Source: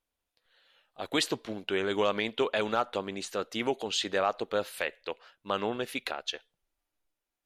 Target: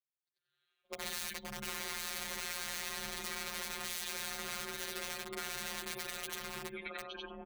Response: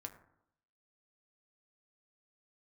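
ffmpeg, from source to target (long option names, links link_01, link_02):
-filter_complex "[0:a]afftfilt=real='re':imag='-im':win_size=8192:overlap=0.75,afftdn=noise_reduction=27:noise_floor=-46,acrossover=split=4200[link_01][link_02];[link_02]acompressor=threshold=-57dB:ratio=4:attack=1:release=60[link_03];[link_01][link_03]amix=inputs=2:normalize=0,highshelf=frequency=9900:gain=4,asplit=2[link_04][link_05];[link_05]adelay=864,lowpass=frequency=1400:poles=1,volume=-5dB,asplit=2[link_06][link_07];[link_07]adelay=864,lowpass=frequency=1400:poles=1,volume=0.29,asplit=2[link_08][link_09];[link_09]adelay=864,lowpass=frequency=1400:poles=1,volume=0.29,asplit=2[link_10][link_11];[link_11]adelay=864,lowpass=frequency=1400:poles=1,volume=0.29[link_12];[link_04][link_06][link_08][link_10][link_12]amix=inputs=5:normalize=0,aeval=exprs='(mod(56.2*val(0)+1,2)-1)/56.2':channel_layout=same,lowshelf=frequency=460:gain=-11.5,aecho=1:1:6.3:0.6,acompressor=threshold=-53dB:ratio=5,afftfilt=real='hypot(re,im)*cos(PI*b)':imag='0':win_size=1024:overlap=0.75,afreqshift=-140,volume=16.5dB"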